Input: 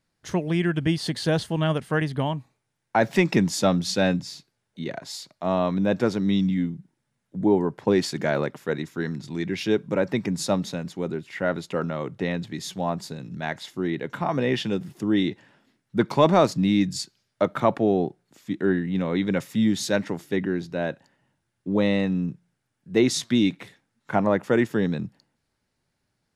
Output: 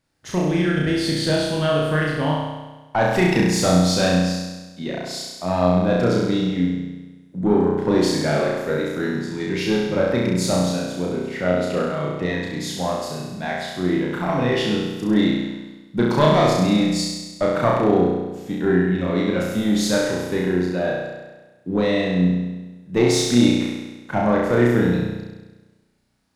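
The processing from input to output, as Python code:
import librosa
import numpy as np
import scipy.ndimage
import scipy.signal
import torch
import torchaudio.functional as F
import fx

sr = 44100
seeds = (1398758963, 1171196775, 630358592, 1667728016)

y = fx.diode_clip(x, sr, knee_db=-16.0)
y = fx.room_flutter(y, sr, wall_m=5.7, rt60_s=1.2)
y = F.gain(torch.from_numpy(y), 1.5).numpy()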